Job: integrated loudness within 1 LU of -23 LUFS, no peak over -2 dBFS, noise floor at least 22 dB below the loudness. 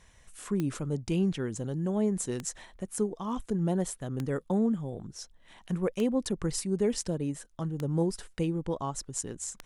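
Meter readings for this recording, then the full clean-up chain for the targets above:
clicks found 6; loudness -31.5 LUFS; peak level -15.5 dBFS; loudness target -23.0 LUFS
-> de-click; trim +8.5 dB

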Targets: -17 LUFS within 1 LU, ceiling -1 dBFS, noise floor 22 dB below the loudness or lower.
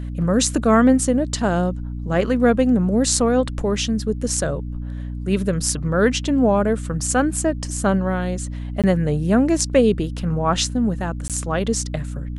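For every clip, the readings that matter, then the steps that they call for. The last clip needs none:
dropouts 2; longest dropout 17 ms; hum 60 Hz; highest harmonic 300 Hz; hum level -26 dBFS; loudness -20.0 LUFS; peak level -1.5 dBFS; loudness target -17.0 LUFS
-> interpolate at 8.82/11.28 s, 17 ms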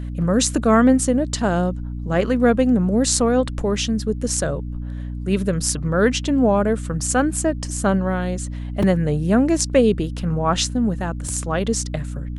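dropouts 0; hum 60 Hz; highest harmonic 300 Hz; hum level -26 dBFS
-> hum notches 60/120/180/240/300 Hz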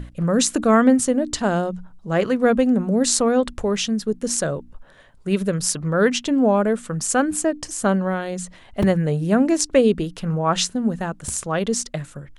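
hum not found; loudness -20.5 LUFS; peak level -1.5 dBFS; loudness target -17.0 LUFS
-> trim +3.5 dB; peak limiter -1 dBFS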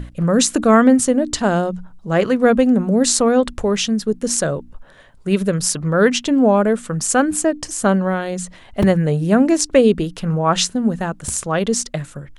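loudness -17.0 LUFS; peak level -1.0 dBFS; noise floor -45 dBFS

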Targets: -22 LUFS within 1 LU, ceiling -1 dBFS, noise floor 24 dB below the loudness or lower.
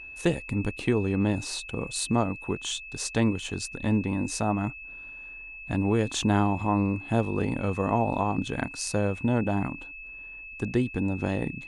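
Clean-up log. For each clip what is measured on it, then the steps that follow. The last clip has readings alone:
steady tone 2.6 kHz; tone level -40 dBFS; loudness -28.0 LUFS; peak level -9.5 dBFS; loudness target -22.0 LUFS
-> band-stop 2.6 kHz, Q 30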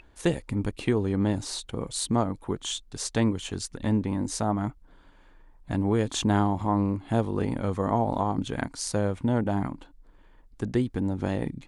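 steady tone not found; loudness -28.0 LUFS; peak level -9.5 dBFS; loudness target -22.0 LUFS
-> trim +6 dB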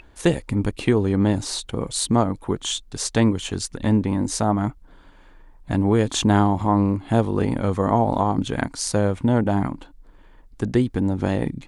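loudness -22.0 LUFS; peak level -3.5 dBFS; noise floor -49 dBFS

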